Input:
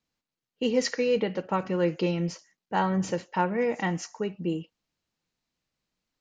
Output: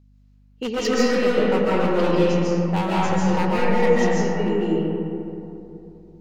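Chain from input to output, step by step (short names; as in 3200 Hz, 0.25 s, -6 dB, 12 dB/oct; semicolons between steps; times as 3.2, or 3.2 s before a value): wavefolder -20 dBFS; digital reverb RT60 3.1 s, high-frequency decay 0.35×, pre-delay 0.105 s, DRR -7.5 dB; hum 50 Hz, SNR 33 dB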